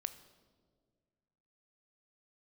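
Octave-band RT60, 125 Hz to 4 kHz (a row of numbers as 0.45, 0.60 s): 2.4, 2.2, 2.1, 1.5, 1.0, 1.1 s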